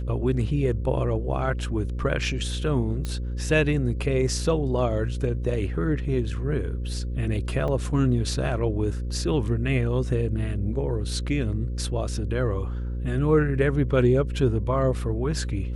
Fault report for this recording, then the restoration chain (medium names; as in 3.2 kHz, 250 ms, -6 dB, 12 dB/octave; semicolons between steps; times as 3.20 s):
buzz 60 Hz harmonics 9 -29 dBFS
3.05 s: pop -17 dBFS
7.68 s: dropout 3.9 ms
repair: de-click; de-hum 60 Hz, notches 9; interpolate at 7.68 s, 3.9 ms